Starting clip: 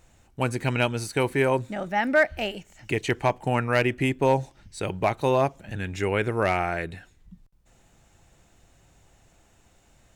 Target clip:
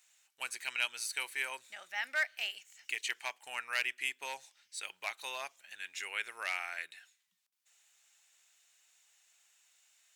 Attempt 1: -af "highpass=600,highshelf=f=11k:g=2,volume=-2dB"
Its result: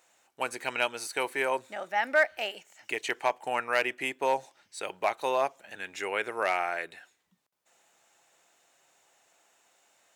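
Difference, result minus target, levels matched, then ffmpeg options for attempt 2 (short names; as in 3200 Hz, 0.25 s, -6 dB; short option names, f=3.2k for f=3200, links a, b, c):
500 Hz band +13.5 dB
-af "highpass=2.3k,highshelf=f=11k:g=2,volume=-2dB"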